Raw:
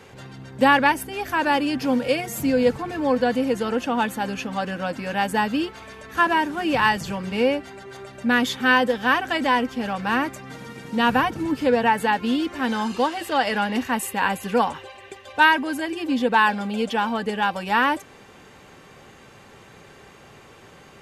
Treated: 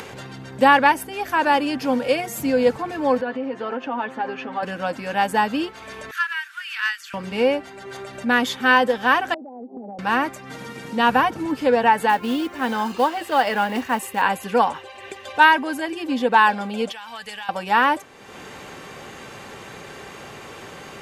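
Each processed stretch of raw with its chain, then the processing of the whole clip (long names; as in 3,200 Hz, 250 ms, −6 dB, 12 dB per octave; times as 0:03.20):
0:03.21–0:04.63: comb filter 7.5 ms, depth 61% + downward compressor 4 to 1, threshold −23 dBFS + band-pass filter 210–2,400 Hz
0:06.11–0:07.14: elliptic high-pass filter 1,400 Hz, stop band 60 dB + parametric band 7,200 Hz −5.5 dB 2.4 octaves + saturating transformer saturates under 1,200 Hz
0:09.34–0:09.99: Chebyshev band-pass filter 200–830 Hz, order 5 + downward compressor 12 to 1, threshold −34 dBFS + high-frequency loss of the air 230 metres
0:12.09–0:14.22: high-shelf EQ 4,400 Hz −4.5 dB + log-companded quantiser 6 bits
0:16.92–0:17.49: guitar amp tone stack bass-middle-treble 10-0-10 + notch filter 1,400 Hz, Q 27 + downward compressor 5 to 1, threshold −33 dBFS
whole clip: dynamic equaliser 810 Hz, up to +4 dB, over −31 dBFS, Q 0.78; upward compression, threshold −27 dBFS; low-shelf EQ 150 Hz −7 dB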